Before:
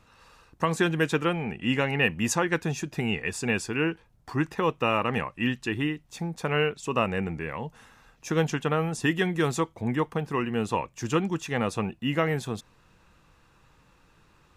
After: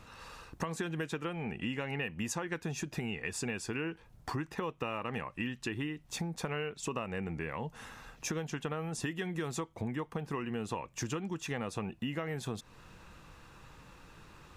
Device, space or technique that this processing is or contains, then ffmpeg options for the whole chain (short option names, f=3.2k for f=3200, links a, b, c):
serial compression, leveller first: -af "acompressor=threshold=-29dB:ratio=2,acompressor=threshold=-41dB:ratio=4,volume=5.5dB"